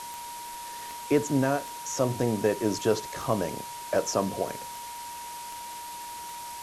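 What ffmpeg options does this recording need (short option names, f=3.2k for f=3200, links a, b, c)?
-af "adeclick=t=4,bandreject=f=950:w=30,afftdn=nr=30:nf=-40"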